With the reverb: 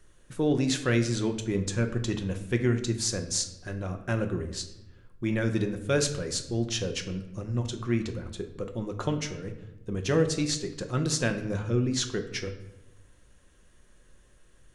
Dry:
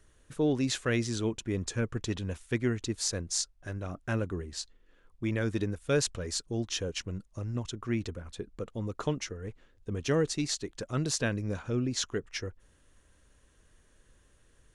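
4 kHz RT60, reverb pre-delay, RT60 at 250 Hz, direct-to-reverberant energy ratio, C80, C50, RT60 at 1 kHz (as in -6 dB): 0.65 s, 5 ms, 1.3 s, 5.5 dB, 13.0 dB, 10.0 dB, 0.90 s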